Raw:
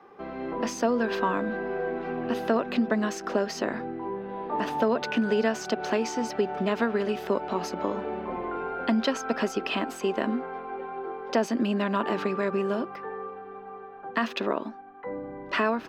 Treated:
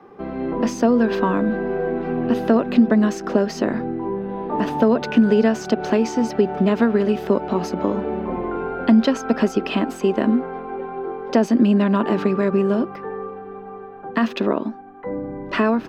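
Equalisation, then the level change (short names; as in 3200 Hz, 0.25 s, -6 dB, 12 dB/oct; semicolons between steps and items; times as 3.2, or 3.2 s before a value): low shelf 80 Hz +11.5 dB; bell 200 Hz +8 dB 2.8 oct; +2.0 dB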